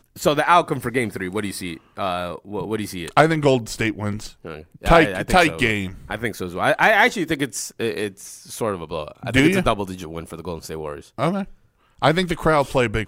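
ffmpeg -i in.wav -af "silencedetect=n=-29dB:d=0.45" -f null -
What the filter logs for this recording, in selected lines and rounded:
silence_start: 11.44
silence_end: 12.02 | silence_duration: 0.58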